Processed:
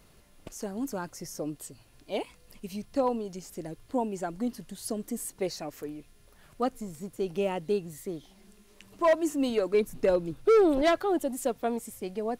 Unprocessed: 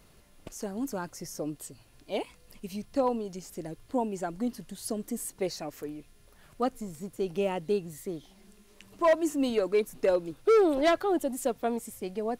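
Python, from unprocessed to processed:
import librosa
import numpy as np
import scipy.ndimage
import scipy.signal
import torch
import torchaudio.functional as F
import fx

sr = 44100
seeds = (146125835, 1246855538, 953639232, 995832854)

y = fx.bass_treble(x, sr, bass_db=8, treble_db=-1, at=(9.74, 10.82))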